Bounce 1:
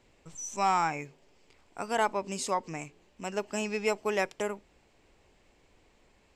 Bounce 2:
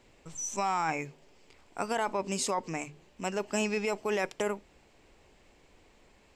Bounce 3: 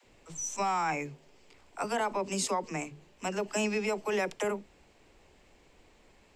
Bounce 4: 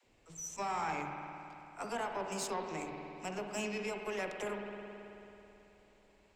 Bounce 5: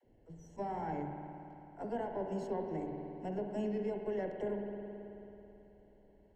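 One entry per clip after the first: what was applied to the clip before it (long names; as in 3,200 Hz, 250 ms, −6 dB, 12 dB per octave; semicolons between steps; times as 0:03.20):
mains-hum notches 50/100/150 Hz; in parallel at +2.5 dB: compressor whose output falls as the input rises −31 dBFS, ratio −0.5; on the sum: level −6 dB
all-pass dispersion lows, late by 49 ms, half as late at 340 Hz
spring reverb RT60 3.2 s, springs 54 ms, chirp 45 ms, DRR 2.5 dB; harmonic generator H 4 −20 dB, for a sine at −17 dBFS; level −8 dB
moving average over 36 samples; level +5 dB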